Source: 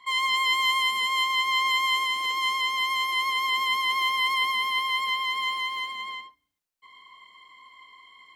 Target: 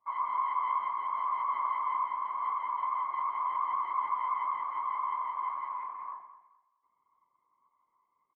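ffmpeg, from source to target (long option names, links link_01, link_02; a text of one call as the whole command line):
ffmpeg -i in.wav -af "afwtdn=0.02,lowpass=frequency=1100:width=0.5412,lowpass=frequency=1100:width=1.3066,afftfilt=real='hypot(re,im)*cos(2*PI*random(0))':imag='hypot(re,im)*sin(2*PI*random(1))':win_size=512:overlap=0.75,aecho=1:1:213|426|639:0.211|0.0571|0.0154,volume=5.5dB" out.wav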